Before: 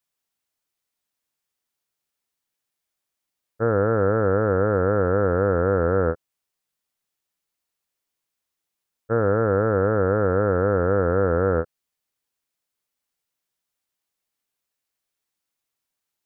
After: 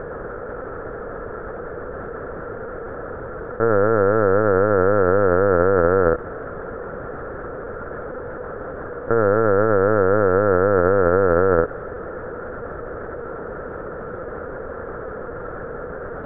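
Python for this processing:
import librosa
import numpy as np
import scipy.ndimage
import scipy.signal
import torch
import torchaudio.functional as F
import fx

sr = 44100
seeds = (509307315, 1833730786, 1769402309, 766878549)

y = fx.bin_compress(x, sr, power=0.2)
y = fx.low_shelf(y, sr, hz=230.0, db=-5.0)
y = fx.lpc_vocoder(y, sr, seeds[0], excitation='pitch_kept', order=16)
y = y * 10.0 ** (2.5 / 20.0)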